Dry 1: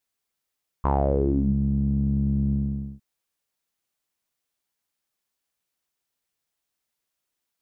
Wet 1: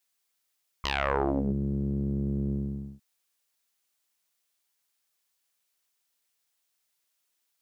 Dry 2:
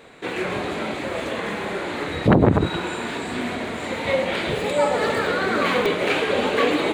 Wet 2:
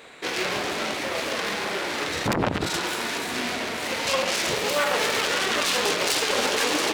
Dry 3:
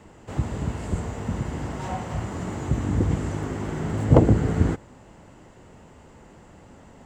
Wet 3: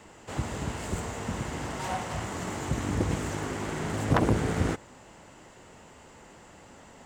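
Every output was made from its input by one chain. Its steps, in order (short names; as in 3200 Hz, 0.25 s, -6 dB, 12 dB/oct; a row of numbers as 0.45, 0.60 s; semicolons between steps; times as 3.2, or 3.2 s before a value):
self-modulated delay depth 0.83 ms; high shelf 2100 Hz +5.5 dB; in parallel at -10 dB: hard clip -11.5 dBFS; on the sum: low shelf 310 Hz -8 dB; limiter -10 dBFS; normalise peaks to -12 dBFS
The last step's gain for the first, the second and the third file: -2.0, -2.0, -2.0 dB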